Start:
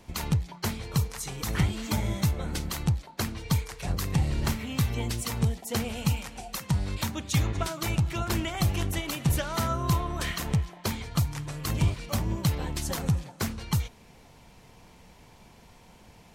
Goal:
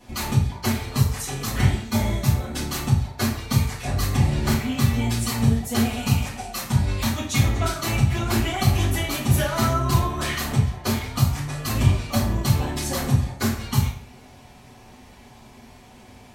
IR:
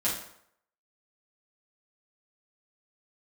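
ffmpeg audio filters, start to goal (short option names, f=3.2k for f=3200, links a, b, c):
-filter_complex "[0:a]asplit=3[a][b][c];[a]afade=t=out:st=1.47:d=0.02[d];[b]agate=range=-33dB:threshold=-26dB:ratio=3:detection=peak,afade=t=in:st=1.47:d=0.02,afade=t=out:st=2.54:d=0.02[e];[c]afade=t=in:st=2.54:d=0.02[f];[d][e][f]amix=inputs=3:normalize=0[g];[1:a]atrim=start_sample=2205,asetrate=52920,aresample=44100[h];[g][h]afir=irnorm=-1:irlink=0"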